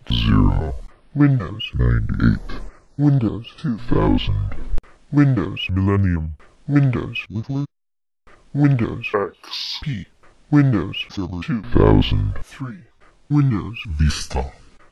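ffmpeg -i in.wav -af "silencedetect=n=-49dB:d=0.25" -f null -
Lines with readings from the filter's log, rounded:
silence_start: 7.66
silence_end: 8.27 | silence_duration: 0.61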